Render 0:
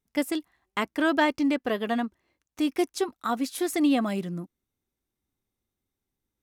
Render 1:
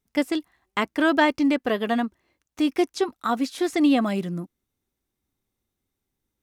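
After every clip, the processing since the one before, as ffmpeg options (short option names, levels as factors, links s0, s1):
-filter_complex "[0:a]acrossover=split=6800[s0][s1];[s1]acompressor=threshold=0.00251:ratio=4:attack=1:release=60[s2];[s0][s2]amix=inputs=2:normalize=0,volume=1.5"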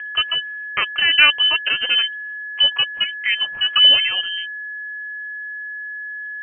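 -af "aphaser=in_gain=1:out_gain=1:delay=4:decay=0.37:speed=0.79:type=sinusoidal,aeval=exprs='val(0)+0.0282*sin(2*PI*1600*n/s)':c=same,lowpass=f=2800:t=q:w=0.5098,lowpass=f=2800:t=q:w=0.6013,lowpass=f=2800:t=q:w=0.9,lowpass=f=2800:t=q:w=2.563,afreqshift=-3300,volume=1.5"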